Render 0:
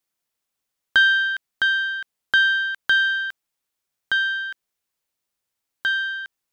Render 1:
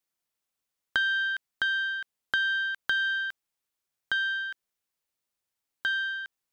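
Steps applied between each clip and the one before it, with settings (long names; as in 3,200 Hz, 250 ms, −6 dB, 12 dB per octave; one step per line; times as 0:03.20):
downward compressor 4 to 1, threshold −20 dBFS, peak gain reduction 7 dB
level −4.5 dB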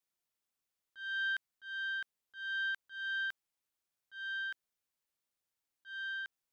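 volume swells 365 ms
level −4 dB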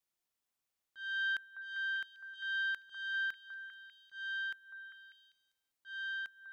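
echo through a band-pass that steps 198 ms, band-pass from 940 Hz, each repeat 0.7 octaves, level −6 dB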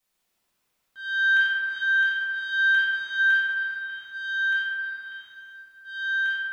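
convolution reverb RT60 3.2 s, pre-delay 4 ms, DRR −9 dB
level +6.5 dB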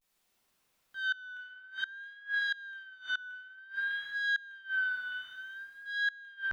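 pitch vibrato 0.54 Hz 82 cents
gate with flip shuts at −22 dBFS, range −25 dB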